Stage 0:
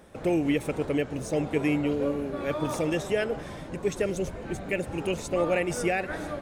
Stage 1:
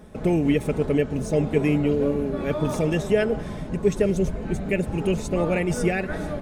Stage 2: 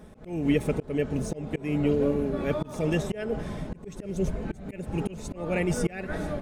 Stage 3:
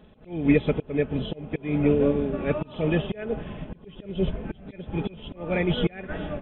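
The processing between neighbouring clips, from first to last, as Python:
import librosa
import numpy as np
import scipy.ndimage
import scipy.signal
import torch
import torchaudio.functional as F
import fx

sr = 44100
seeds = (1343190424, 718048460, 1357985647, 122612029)

y1 = fx.low_shelf(x, sr, hz=320.0, db=11.0)
y1 = y1 + 0.4 * np.pad(y1, (int(4.7 * sr / 1000.0), 0))[:len(y1)]
y2 = fx.auto_swell(y1, sr, attack_ms=278.0)
y2 = F.gain(torch.from_numpy(y2), -2.0).numpy()
y3 = fx.freq_compress(y2, sr, knee_hz=2400.0, ratio=4.0)
y3 = fx.upward_expand(y3, sr, threshold_db=-38.0, expansion=1.5)
y3 = F.gain(torch.from_numpy(y3), 5.0).numpy()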